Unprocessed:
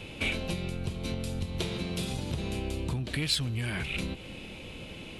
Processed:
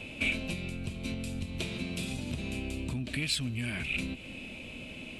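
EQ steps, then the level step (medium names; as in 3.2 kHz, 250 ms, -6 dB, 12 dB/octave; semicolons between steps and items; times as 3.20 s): graphic EQ with 31 bands 250 Hz +10 dB, 630 Hz +10 dB, 2.5 kHz +9 dB, 8 kHz +5 dB; dynamic bell 650 Hz, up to -7 dB, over -47 dBFS, Q 0.98; -4.0 dB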